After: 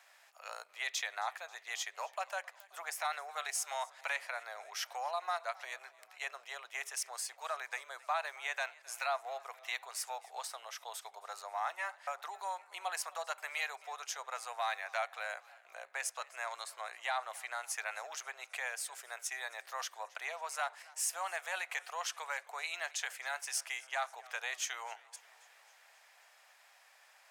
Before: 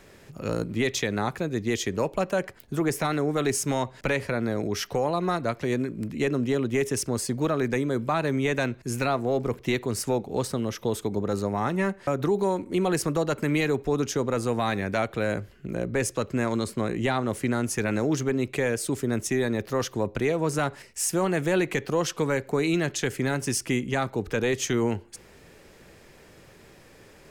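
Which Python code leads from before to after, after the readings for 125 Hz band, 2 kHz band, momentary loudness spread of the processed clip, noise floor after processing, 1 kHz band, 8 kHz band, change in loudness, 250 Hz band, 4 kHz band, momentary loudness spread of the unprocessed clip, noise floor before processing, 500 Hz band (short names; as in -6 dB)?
under -40 dB, -6.5 dB, 8 LU, -64 dBFS, -7.0 dB, -7.5 dB, -12.5 dB, under -40 dB, -7.0 dB, 4 LU, -52 dBFS, -20.5 dB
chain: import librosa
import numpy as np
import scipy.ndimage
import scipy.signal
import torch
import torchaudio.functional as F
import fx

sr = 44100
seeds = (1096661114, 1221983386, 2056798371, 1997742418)

y = scipy.signal.sosfilt(scipy.signal.ellip(4, 1.0, 60, 700.0, 'highpass', fs=sr, output='sos'), x)
y = fx.echo_warbled(y, sr, ms=267, feedback_pct=64, rate_hz=2.8, cents=97, wet_db=-22.5)
y = F.gain(torch.from_numpy(y), -6.5).numpy()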